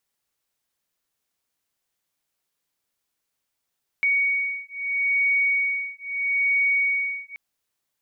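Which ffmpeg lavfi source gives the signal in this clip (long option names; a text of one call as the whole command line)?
ffmpeg -f lavfi -i "aevalsrc='0.0668*(sin(2*PI*2240*t)+sin(2*PI*2240.77*t))':duration=3.33:sample_rate=44100" out.wav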